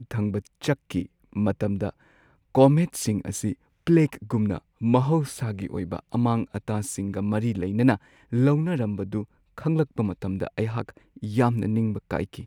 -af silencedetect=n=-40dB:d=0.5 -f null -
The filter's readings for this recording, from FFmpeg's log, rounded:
silence_start: 1.90
silence_end: 2.55 | silence_duration: 0.65